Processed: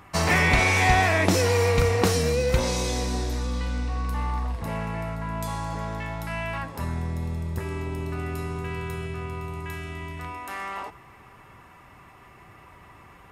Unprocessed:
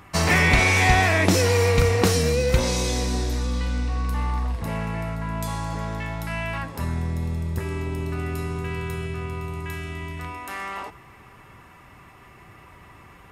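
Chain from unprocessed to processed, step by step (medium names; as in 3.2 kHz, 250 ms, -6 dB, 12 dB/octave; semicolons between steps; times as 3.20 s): peaking EQ 830 Hz +3 dB 1.6 oct; trim -3 dB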